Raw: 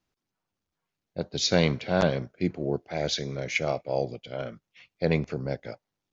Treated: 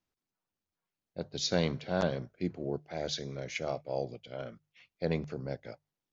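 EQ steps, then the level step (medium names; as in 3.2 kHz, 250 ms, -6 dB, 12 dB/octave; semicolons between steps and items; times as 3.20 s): hum notches 50/100/150 Hz; dynamic bell 2.3 kHz, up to -5 dB, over -48 dBFS, Q 3.2; -6.5 dB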